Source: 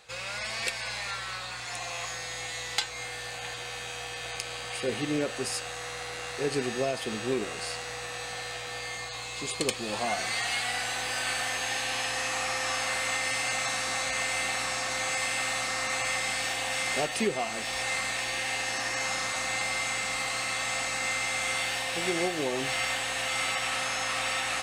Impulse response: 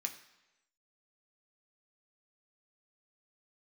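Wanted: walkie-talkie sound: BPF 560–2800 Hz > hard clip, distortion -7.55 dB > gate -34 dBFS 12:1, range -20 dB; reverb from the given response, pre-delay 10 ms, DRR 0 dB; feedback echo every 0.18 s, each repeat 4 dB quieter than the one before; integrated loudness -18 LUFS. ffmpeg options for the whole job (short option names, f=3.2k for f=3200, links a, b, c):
-filter_complex "[0:a]aecho=1:1:180|360|540|720|900|1080|1260|1440|1620:0.631|0.398|0.25|0.158|0.0994|0.0626|0.0394|0.0249|0.0157,asplit=2[a][b];[1:a]atrim=start_sample=2205,adelay=10[c];[b][c]afir=irnorm=-1:irlink=0,volume=0.5dB[d];[a][d]amix=inputs=2:normalize=0,highpass=560,lowpass=2.8k,asoftclip=type=hard:threshold=-30dB,agate=range=-20dB:threshold=-34dB:ratio=12,volume=13dB"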